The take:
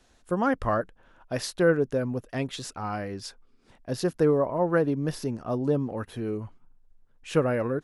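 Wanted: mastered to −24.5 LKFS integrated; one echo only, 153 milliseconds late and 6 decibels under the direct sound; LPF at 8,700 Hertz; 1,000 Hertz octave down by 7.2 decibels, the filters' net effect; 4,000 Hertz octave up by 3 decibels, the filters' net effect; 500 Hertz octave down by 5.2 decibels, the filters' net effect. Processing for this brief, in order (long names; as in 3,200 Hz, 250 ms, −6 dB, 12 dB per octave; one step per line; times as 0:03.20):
low-pass filter 8,700 Hz
parametric band 500 Hz −4 dB
parametric band 1,000 Hz −9 dB
parametric band 4,000 Hz +4.5 dB
single-tap delay 153 ms −6 dB
level +5.5 dB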